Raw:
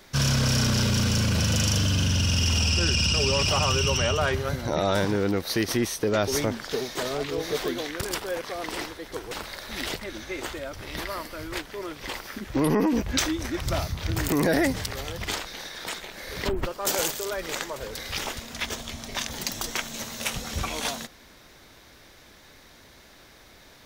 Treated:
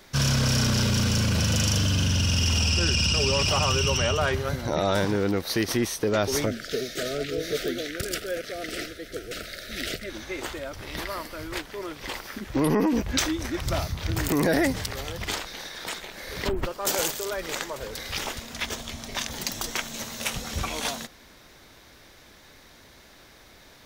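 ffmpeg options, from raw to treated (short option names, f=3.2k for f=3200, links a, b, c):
-filter_complex "[0:a]asettb=1/sr,asplit=3[a][b][c];[a]atrim=end=6.464[d];[b]atrim=start=6.46:end=10.1,asetpts=PTS-STARTPTS,afade=t=in:d=0.004:c=qsin,afade=t=out:st=3.636:d=0.004:c=qsin,asuperstop=centerf=940:order=12:qfactor=1.7[e];[c]atrim=start=10.096[f];[d][e]acrossfade=d=0.004:c1=hsin:c2=qsin[g];[g][f]acrossfade=d=0.004:c1=qsin:c2=hsin"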